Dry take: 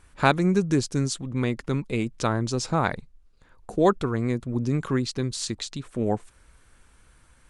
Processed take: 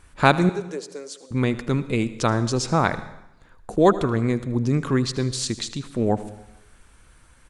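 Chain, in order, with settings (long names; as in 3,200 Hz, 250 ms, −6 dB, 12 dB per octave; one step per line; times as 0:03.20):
0:00.49–0:01.31: four-pole ladder high-pass 450 Hz, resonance 65%
single-tap delay 78 ms −18 dB
dense smooth reverb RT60 0.88 s, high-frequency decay 0.9×, pre-delay 95 ms, DRR 16 dB
level +3.5 dB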